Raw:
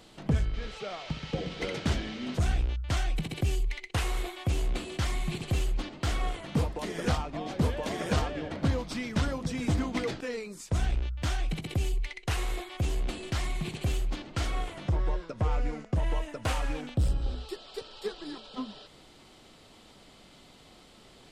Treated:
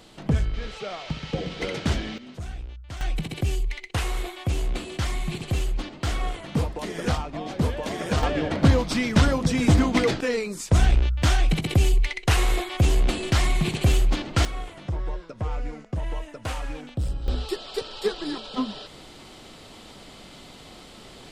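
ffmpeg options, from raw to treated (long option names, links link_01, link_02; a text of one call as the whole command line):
ffmpeg -i in.wav -af "asetnsamples=nb_out_samples=441:pad=0,asendcmd='2.18 volume volume -8dB;3.01 volume volume 3dB;8.23 volume volume 10dB;14.45 volume volume -1dB;17.28 volume volume 9.5dB',volume=4dB" out.wav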